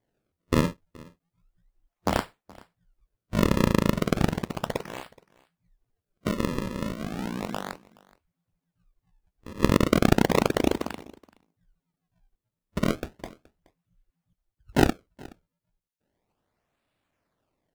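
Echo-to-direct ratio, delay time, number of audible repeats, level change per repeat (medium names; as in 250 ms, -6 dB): -24.0 dB, 423 ms, 1, no regular repeats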